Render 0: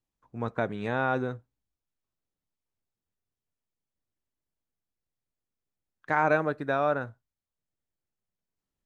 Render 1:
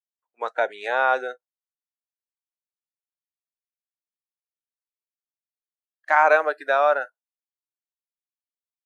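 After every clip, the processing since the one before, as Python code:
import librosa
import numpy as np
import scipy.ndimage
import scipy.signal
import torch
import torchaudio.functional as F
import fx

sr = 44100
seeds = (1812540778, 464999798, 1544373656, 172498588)

y = scipy.signal.sosfilt(scipy.signal.butter(4, 520.0, 'highpass', fs=sr, output='sos'), x)
y = fx.noise_reduce_blind(y, sr, reduce_db=29)
y = F.gain(torch.from_numpy(y), 8.5).numpy()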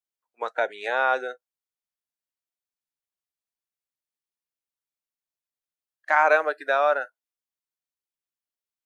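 y = fx.dynamic_eq(x, sr, hz=830.0, q=0.85, threshold_db=-29.0, ratio=4.0, max_db=-3)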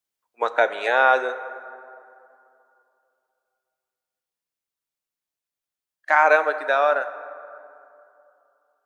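y = fx.rider(x, sr, range_db=10, speed_s=2.0)
y = fx.rev_plate(y, sr, seeds[0], rt60_s=2.7, hf_ratio=0.45, predelay_ms=0, drr_db=11.5)
y = F.gain(torch.from_numpy(y), 3.0).numpy()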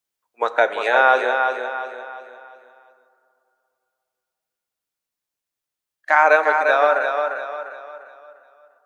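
y = fx.echo_feedback(x, sr, ms=349, feedback_pct=39, wet_db=-6)
y = F.gain(torch.from_numpy(y), 2.0).numpy()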